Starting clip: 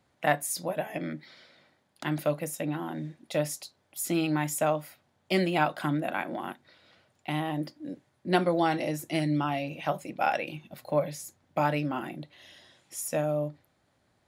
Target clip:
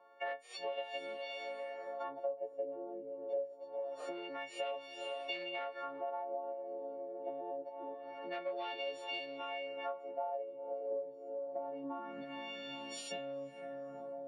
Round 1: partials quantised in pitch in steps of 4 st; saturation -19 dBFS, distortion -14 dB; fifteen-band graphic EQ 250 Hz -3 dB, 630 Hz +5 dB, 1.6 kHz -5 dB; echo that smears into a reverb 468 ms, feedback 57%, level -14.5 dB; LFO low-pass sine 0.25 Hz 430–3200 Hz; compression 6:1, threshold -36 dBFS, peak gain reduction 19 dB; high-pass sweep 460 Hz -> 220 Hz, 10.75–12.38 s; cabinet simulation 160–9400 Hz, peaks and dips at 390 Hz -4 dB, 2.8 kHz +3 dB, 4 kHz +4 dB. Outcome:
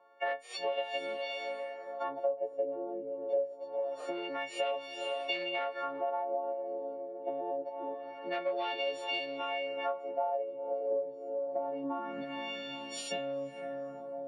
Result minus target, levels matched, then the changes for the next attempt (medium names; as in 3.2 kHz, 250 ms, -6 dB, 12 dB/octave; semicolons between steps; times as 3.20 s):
compression: peak gain reduction -6 dB
change: compression 6:1, threshold -43.5 dBFS, peak gain reduction 25 dB